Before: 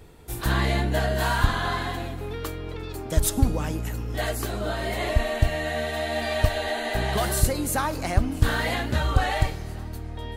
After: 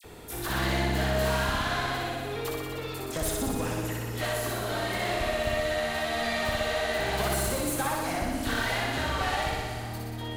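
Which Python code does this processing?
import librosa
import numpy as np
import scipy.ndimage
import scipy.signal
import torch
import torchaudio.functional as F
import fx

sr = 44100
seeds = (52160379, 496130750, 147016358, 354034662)

p1 = fx.low_shelf(x, sr, hz=170.0, db=-10.5)
p2 = fx.tube_stage(p1, sr, drive_db=26.0, bias=0.65)
p3 = fx.dispersion(p2, sr, late='lows', ms=41.0, hz=2200.0)
p4 = p3 + fx.room_flutter(p3, sr, wall_m=10.4, rt60_s=1.3, dry=0)
y = fx.band_squash(p4, sr, depth_pct=40)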